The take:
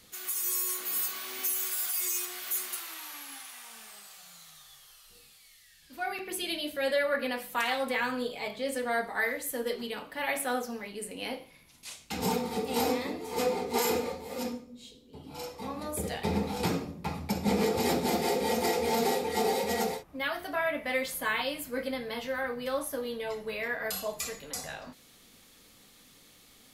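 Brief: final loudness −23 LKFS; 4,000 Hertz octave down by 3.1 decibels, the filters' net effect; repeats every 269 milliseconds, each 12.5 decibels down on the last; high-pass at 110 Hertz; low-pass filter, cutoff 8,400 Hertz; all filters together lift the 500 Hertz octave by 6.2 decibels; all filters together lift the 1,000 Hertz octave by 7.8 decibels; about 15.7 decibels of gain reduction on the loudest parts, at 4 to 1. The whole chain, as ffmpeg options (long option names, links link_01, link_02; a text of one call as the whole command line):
ffmpeg -i in.wav -af "highpass=110,lowpass=8400,equalizer=frequency=500:width_type=o:gain=5,equalizer=frequency=1000:width_type=o:gain=8.5,equalizer=frequency=4000:width_type=o:gain=-4.5,acompressor=threshold=-38dB:ratio=4,aecho=1:1:269|538|807:0.237|0.0569|0.0137,volume=16.5dB" out.wav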